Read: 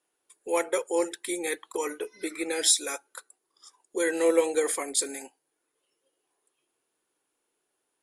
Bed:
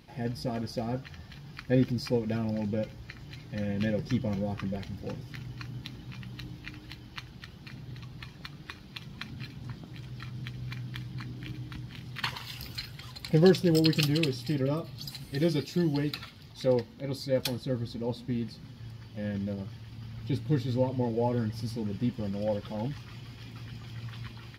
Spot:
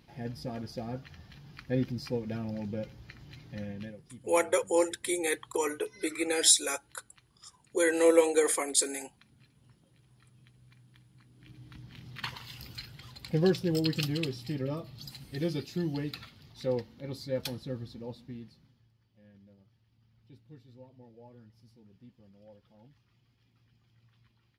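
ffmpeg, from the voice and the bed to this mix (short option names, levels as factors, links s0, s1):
-filter_complex "[0:a]adelay=3800,volume=1.06[s0];[1:a]volume=3.55,afade=t=out:st=3.56:d=0.42:silence=0.158489,afade=t=in:st=11.3:d=0.76:silence=0.158489,afade=t=out:st=17.56:d=1.32:silence=0.1[s1];[s0][s1]amix=inputs=2:normalize=0"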